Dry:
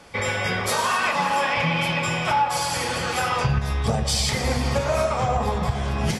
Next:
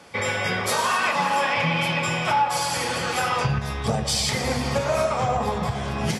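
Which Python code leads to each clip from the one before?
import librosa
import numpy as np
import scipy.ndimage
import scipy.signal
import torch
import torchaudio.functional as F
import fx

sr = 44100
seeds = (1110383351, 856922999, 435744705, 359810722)

y = scipy.signal.sosfilt(scipy.signal.butter(2, 100.0, 'highpass', fs=sr, output='sos'), x)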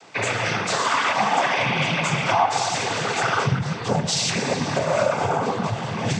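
y = fx.noise_vocoder(x, sr, seeds[0], bands=16)
y = y * librosa.db_to_amplitude(2.0)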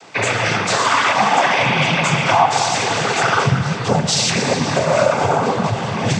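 y = fx.echo_feedback(x, sr, ms=277, feedback_pct=58, wet_db=-14.5)
y = y * librosa.db_to_amplitude(5.5)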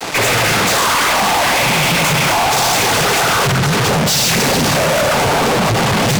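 y = fx.fuzz(x, sr, gain_db=38.0, gate_db=-45.0)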